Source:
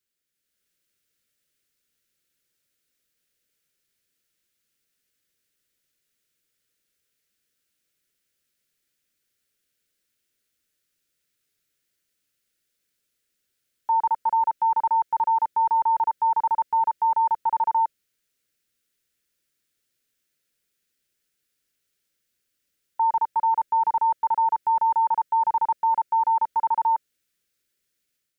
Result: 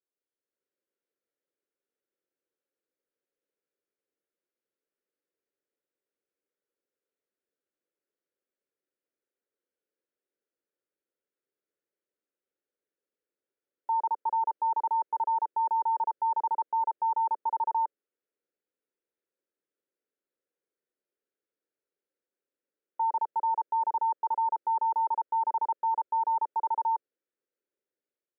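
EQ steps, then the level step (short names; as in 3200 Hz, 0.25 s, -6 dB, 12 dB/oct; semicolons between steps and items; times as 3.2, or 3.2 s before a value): ladder band-pass 520 Hz, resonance 30%; +8.0 dB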